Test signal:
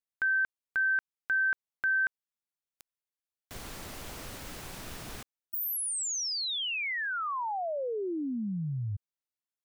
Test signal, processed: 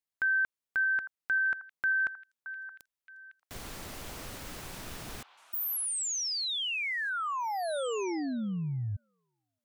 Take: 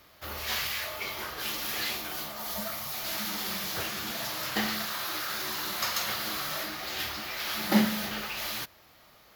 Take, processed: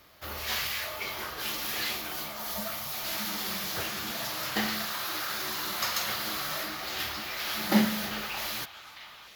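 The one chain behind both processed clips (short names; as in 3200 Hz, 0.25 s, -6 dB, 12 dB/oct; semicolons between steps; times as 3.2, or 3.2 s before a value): delay with a stepping band-pass 0.622 s, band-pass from 1100 Hz, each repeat 1.4 oct, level -9.5 dB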